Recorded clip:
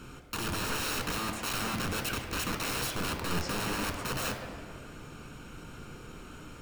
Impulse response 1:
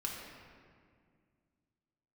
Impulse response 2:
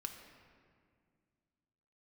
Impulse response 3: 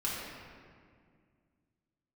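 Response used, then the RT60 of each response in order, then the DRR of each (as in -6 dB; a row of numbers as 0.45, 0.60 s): 2; 2.1, 2.1, 2.1 s; -2.0, 4.5, -7.0 dB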